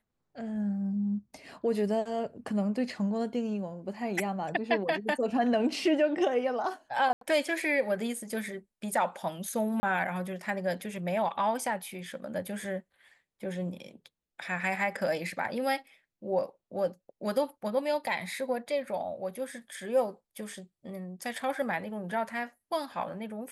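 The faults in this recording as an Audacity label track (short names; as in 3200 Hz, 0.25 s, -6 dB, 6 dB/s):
7.130000	7.210000	gap 83 ms
9.800000	9.830000	gap 30 ms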